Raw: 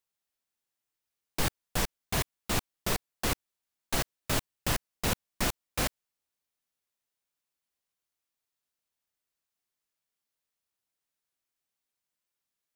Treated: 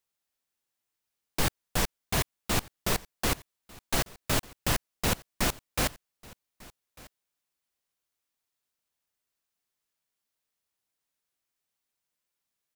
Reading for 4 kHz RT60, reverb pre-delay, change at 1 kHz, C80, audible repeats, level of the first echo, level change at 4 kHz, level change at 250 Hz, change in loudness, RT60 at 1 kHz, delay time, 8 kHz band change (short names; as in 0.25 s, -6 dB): none, none, +2.0 dB, none, 1, -23.0 dB, +2.0 dB, +2.0 dB, +2.0 dB, none, 1.197 s, +2.0 dB